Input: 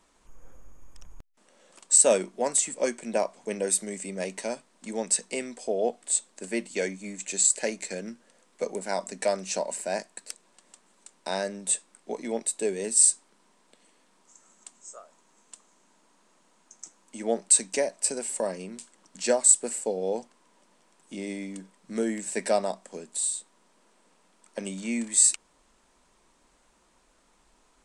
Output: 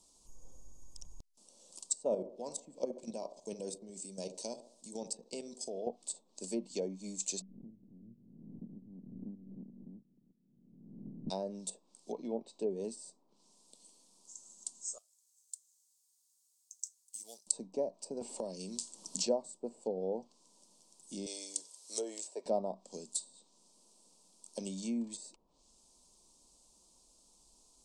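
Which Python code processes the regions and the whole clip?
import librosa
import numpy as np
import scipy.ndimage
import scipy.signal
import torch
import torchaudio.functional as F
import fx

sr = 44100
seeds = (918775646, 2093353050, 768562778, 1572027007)

y = fx.chain(x, sr, fx.level_steps(step_db=11),
    fx.echo_wet_bandpass(ms=68, feedback_pct=45, hz=480.0, wet_db=-10.5), at=(1.94, 5.87))
y = fx.spec_clip(y, sr, under_db=27, at=(7.4, 11.3), fade=0.02)
y = fx.ladder_lowpass(y, sr, hz=260.0, resonance_pct=50, at=(7.4, 11.3), fade=0.02)
y = fx.pre_swell(y, sr, db_per_s=45.0, at=(7.4, 11.3), fade=0.02)
y = fx.chain(y, sr, fx.block_float(bits=7),
    fx.lowpass(hz=2400.0, slope=12), at=(12.12, 12.71))
y = fx.chain(y, sr, fx.law_mismatch(coded='A'),
    fx.pre_emphasis(coefficient=0.97), at=(14.98, 17.47))
y = fx.chain(y, sr, fx.dynamic_eq(hz=1100.0, q=1.0, threshold_db=-44.0, ratio=4.0, max_db=-5),
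    fx.band_squash(depth_pct=70), at=(18.21, 19.27))
y = fx.chain(y, sr, fx.highpass(hz=420.0, slope=24),
    fx.high_shelf(hz=2300.0, db=10.0), at=(21.26, 22.46))
y = fx.notch(y, sr, hz=2000.0, q=7.8)
y = fx.env_lowpass_down(y, sr, base_hz=1000.0, full_db=-24.5)
y = fx.curve_eq(y, sr, hz=(180.0, 1000.0, 1600.0, 4700.0), db=(0, -4, -24, 10))
y = y * librosa.db_to_amplitude(-5.0)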